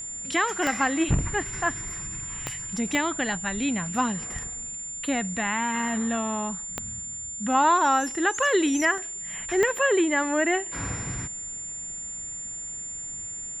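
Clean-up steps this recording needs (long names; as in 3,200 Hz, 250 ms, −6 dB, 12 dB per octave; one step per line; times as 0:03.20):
click removal
notch filter 7,200 Hz, Q 30
repair the gap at 0:08.98, 1.9 ms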